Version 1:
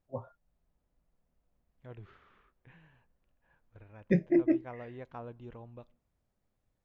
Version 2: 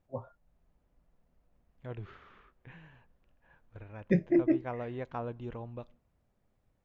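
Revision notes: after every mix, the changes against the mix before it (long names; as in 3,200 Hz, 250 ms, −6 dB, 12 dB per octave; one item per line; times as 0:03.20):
second voice +6.5 dB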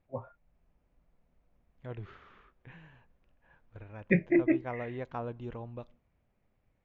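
first voice: add low-pass with resonance 2,300 Hz, resonance Q 4.7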